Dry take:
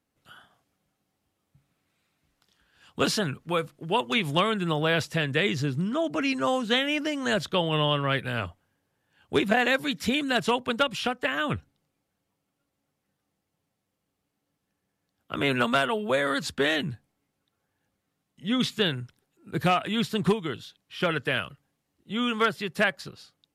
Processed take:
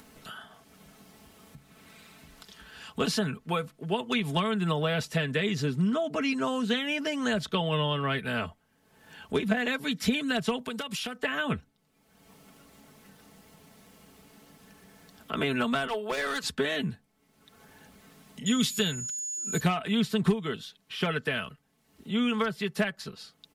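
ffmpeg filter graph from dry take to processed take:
ffmpeg -i in.wav -filter_complex "[0:a]asettb=1/sr,asplit=3[link_01][link_02][link_03];[link_01]atrim=end=10.594[link_04];[link_02]atrim=start=10.59:end=11.17,asetpts=PTS-STARTPTS,afade=type=in:duration=0.004:curve=qsin,afade=type=out:start_time=0.576:duration=0.004:curve=qsin,highpass=56,aemphasis=mode=production:type=cd,acompressor=threshold=-31dB:ratio=12:attack=3.2:release=140:knee=1:detection=peak[link_05];[link_03]atrim=start=11.166[link_06];[link_04][link_05]acrossfade=duration=0.004:curve1=hsin:curve2=qsin[link_07];[link_07][link_06]acrossfade=duration=0.004:curve1=qsin:curve2=hsin,asettb=1/sr,asplit=3[link_08][link_09][link_10];[link_08]atrim=end=15.874[link_11];[link_09]atrim=start=15.87:end=16.44,asetpts=PTS-STARTPTS,afade=type=in:duration=0.004:curve=qsin,afade=type=out:start_time=0.566:duration=0.004:curve=qsin,highpass=450,asoftclip=type=hard:threshold=-25.5dB[link_12];[link_10]atrim=start=16.436[link_13];[link_11][link_12]acrossfade=duration=0.004:curve1=hsin:curve2=qsin[link_14];[link_14][link_13]acrossfade=duration=0.004:curve1=qsin:curve2=hsin,asettb=1/sr,asplit=3[link_15][link_16][link_17];[link_15]atrim=end=18.464[link_18];[link_16]atrim=start=18.46:end=19.6,asetpts=PTS-STARTPTS,afade=type=in:duration=0.004:curve=qsin,afade=type=out:start_time=1.136:duration=0.004:curve=qsin,aemphasis=mode=production:type=75kf,aeval=exprs='val(0)+0.0398*sin(2*PI*6900*n/s)':channel_layout=same[link_19];[link_17]atrim=start=19.596[link_20];[link_18][link_19]acrossfade=duration=0.004:curve1=hsin:curve2=qsin[link_21];[link_21][link_20]acrossfade=duration=0.004:curve1=qsin:curve2=hsin,acompressor=mode=upward:threshold=-36dB:ratio=2.5,aecho=1:1:4.6:0.55,acrossover=split=200[link_22][link_23];[link_23]acompressor=threshold=-26dB:ratio=6[link_24];[link_22][link_24]amix=inputs=2:normalize=0" out.wav

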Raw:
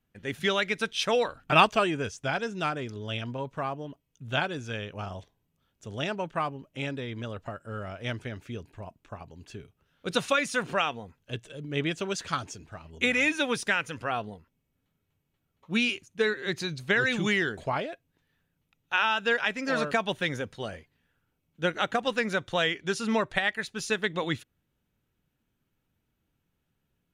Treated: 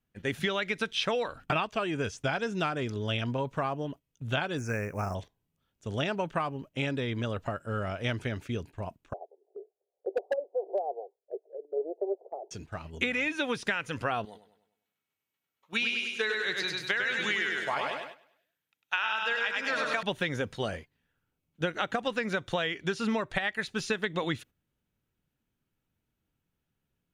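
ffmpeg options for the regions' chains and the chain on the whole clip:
ffmpeg -i in.wav -filter_complex "[0:a]asettb=1/sr,asplit=3[link_01][link_02][link_03];[link_01]atrim=end=4.584[link_04];[link_02]atrim=start=4.58:end=5.15,asetpts=PTS-STARTPTS,afade=type=in:duration=0.004:curve=qsin,afade=type=out:start_time=0.566:duration=0.004:curve=qsin,highshelf=frequency=7300:gain=11,acrusher=bits=7:mode=log:mix=0:aa=0.000001,asuperstop=centerf=3500:order=8:qfactor=1.3[link_05];[link_03]atrim=start=5.146[link_06];[link_04][link_05]acrossfade=duration=0.004:curve1=hsin:curve2=qsin[link_07];[link_07][link_06]acrossfade=duration=0.004:curve1=qsin:curve2=hsin,asettb=1/sr,asplit=3[link_08][link_09][link_10];[link_08]atrim=end=9.134[link_11];[link_09]atrim=start=9.13:end=12.51,asetpts=PTS-STARTPTS,afade=type=in:duration=0.004:curve=qsin,afade=type=out:start_time=3.376:duration=0.004:curve=qsin,asuperpass=centerf=540:order=12:qfactor=1.3,aeval=exprs='0.0891*(abs(mod(val(0)/0.0891+3,4)-2)-1)':channel_layout=same[link_12];[link_10]atrim=start=12.506[link_13];[link_11][link_12]acrossfade=duration=0.004:curve1=hsin:curve2=qsin[link_14];[link_14][link_13]acrossfade=duration=0.004:curve1=qsin:curve2=hsin,asettb=1/sr,asplit=3[link_15][link_16][link_17];[link_15]atrim=end=14.254[link_18];[link_16]atrim=start=14.25:end=20.03,asetpts=PTS-STARTPTS,afade=type=in:duration=0.004:curve=qsin,afade=type=out:start_time=5.776:duration=0.004:curve=qsin,highpass=frequency=1200:poles=1,aecho=1:1:100|200|300|400|500|600:0.708|0.311|0.137|0.0603|0.0265|0.0117,atrim=end_sample=254898[link_19];[link_17]atrim=start=20.026[link_20];[link_18][link_19]acrossfade=duration=0.004:curve1=hsin:curve2=qsin[link_21];[link_21][link_20]acrossfade=duration=0.004:curve1=qsin:curve2=hsin,acrossover=split=4600[link_22][link_23];[link_23]acompressor=threshold=-49dB:ratio=4:attack=1:release=60[link_24];[link_22][link_24]amix=inputs=2:normalize=0,agate=range=-9dB:threshold=-48dB:ratio=16:detection=peak,acompressor=threshold=-30dB:ratio=16,volume=4.5dB" out.wav

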